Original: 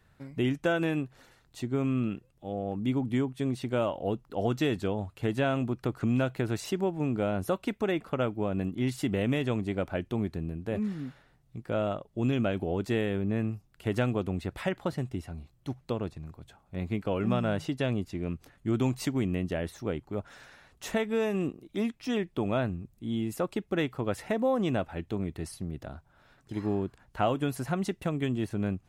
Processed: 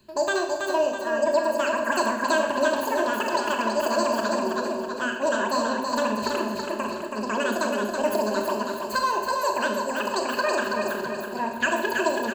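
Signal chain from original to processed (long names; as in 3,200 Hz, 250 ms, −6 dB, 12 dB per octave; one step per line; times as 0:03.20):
repeating echo 764 ms, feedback 46%, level −4.5 dB
on a send at −3.5 dB: convolution reverb RT60 1.9 s, pre-delay 54 ms
on the sum: wrong playback speed 33 rpm record played at 78 rpm
EQ curve with evenly spaced ripples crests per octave 1.4, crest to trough 14 dB
reversed playback
upward compression, threshold −27 dBFS
reversed playback
mains-hum notches 60/120/180/240 Hz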